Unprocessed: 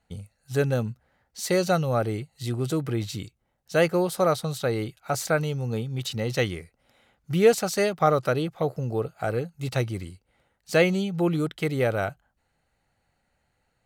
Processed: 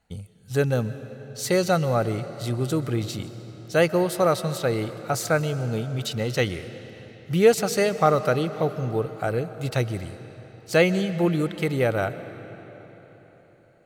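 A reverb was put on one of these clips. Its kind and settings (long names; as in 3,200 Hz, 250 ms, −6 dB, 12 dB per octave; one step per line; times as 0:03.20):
comb and all-pass reverb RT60 4.3 s, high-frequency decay 0.8×, pre-delay 90 ms, DRR 12.5 dB
level +1.5 dB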